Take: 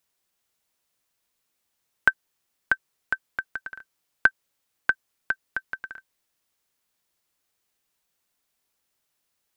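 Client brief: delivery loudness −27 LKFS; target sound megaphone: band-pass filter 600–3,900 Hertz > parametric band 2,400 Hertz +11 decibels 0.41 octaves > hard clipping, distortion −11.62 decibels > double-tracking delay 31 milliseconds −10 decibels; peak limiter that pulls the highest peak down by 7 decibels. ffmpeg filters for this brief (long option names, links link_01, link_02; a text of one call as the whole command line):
ffmpeg -i in.wav -filter_complex "[0:a]alimiter=limit=-10.5dB:level=0:latency=1,highpass=600,lowpass=3900,equalizer=frequency=2400:width_type=o:width=0.41:gain=11,asoftclip=type=hard:threshold=-16.5dB,asplit=2[link_01][link_02];[link_02]adelay=31,volume=-10dB[link_03];[link_01][link_03]amix=inputs=2:normalize=0,volume=5.5dB" out.wav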